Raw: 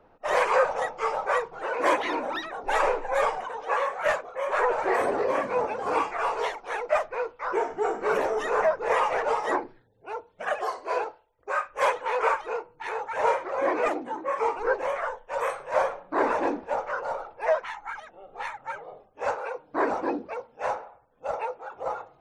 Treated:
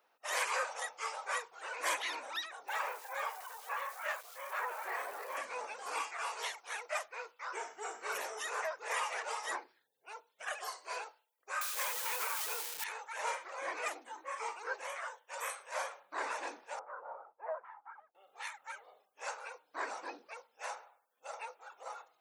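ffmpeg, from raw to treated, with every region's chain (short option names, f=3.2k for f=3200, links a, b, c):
-filter_complex "[0:a]asettb=1/sr,asplit=3[a][b][c];[a]atrim=end=2.684[d];[b]atrim=start=2.68:end=5.37,asetpts=PTS-STARTPTS,afade=t=in:d=0.004:c=qsin,afade=t=out:st=2.686:d=0.004:c=qsin,bandpass=f=1k:t=q:w=0.64,aeval=exprs='val(0)*gte(abs(val(0)),0.00422)':c=same[e];[c]atrim=start=5.366[f];[d][e]acrossfade=d=0.004:c1=hsin:c2=qsin[g];[g][f]acrossfade=d=0.004:c1=qsin:c2=hsin,asettb=1/sr,asplit=3[h][i][j];[h]atrim=end=11.614[k];[i]atrim=start=11.61:end=12.84,asetpts=PTS-STARTPTS,afade=t=in:d=0.004:c=qsin,afade=t=out:st=1.226:d=0.004:c=qsin,aeval=exprs='val(0)+0.5*0.0266*sgn(val(0))':c=same,acompressor=threshold=-23dB:ratio=6:attack=3.2:release=140:knee=1:detection=peak,acrusher=bits=8:dc=4:mix=0:aa=0.000001[l];[j]atrim=start=12.836[m];[k][l]acrossfade=d=0.004:c1=hsin:c2=qsin[n];[n][m]acrossfade=d=0.004:c1=qsin:c2=hsin,asettb=1/sr,asplit=3[o][p][q];[o]atrim=end=16.794[r];[p]atrim=start=16.79:end=18.15,asetpts=PTS-STARTPTS,afade=t=in:d=0.004:c=qsin,afade=t=out:st=1.356:d=0.004:c=qsin,lowpass=f=1.2k:w=0.5412,lowpass=f=1.2k:w=1.3066,agate=range=-33dB:threshold=-43dB:ratio=3:release=100:detection=peak,lowshelf=f=160:g=8.5[s];[q]atrim=start=18.146[t];[r][s]acrossfade=d=0.004:c1=hsin:c2=qsin[u];[u][t]acrossfade=d=0.004:c1=qsin:c2=hsin,highpass=f=260:p=1,aderivative,volume=4.5dB"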